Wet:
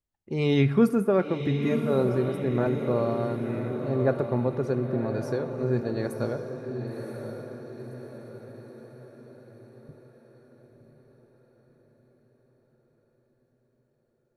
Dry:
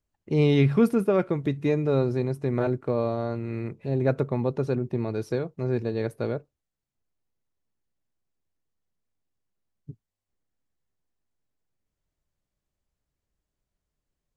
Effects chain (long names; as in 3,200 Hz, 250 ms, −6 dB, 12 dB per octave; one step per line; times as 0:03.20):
0:05.63–0:06.34: high-shelf EQ 7,000 Hz +10.5 dB
noise reduction from a noise print of the clip's start 7 dB
feedback delay with all-pass diffusion 1,038 ms, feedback 50%, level −7 dB
on a send at −14.5 dB: convolution reverb RT60 1.3 s, pre-delay 18 ms